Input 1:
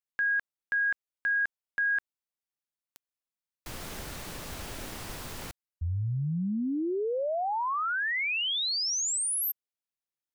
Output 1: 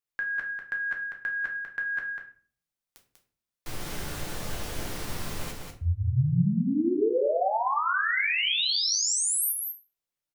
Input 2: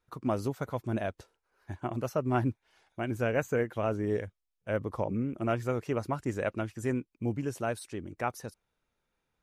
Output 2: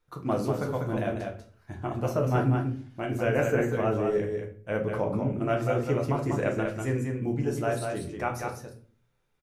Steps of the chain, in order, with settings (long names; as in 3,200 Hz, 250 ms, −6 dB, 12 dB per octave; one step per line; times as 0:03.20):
on a send: single-tap delay 194 ms −5 dB
on the sum: rectangular room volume 34 cubic metres, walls mixed, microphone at 0.5 metres